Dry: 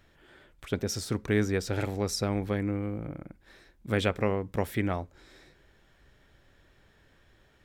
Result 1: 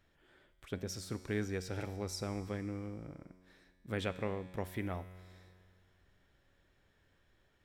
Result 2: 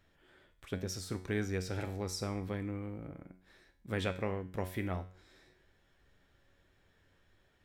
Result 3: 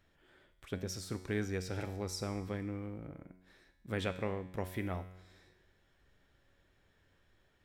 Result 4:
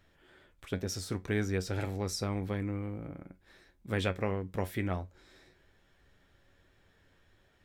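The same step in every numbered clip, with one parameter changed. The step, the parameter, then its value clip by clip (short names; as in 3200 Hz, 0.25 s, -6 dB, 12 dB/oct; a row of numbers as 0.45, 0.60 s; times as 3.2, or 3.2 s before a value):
resonator, decay: 2.2, 0.5, 1, 0.15 s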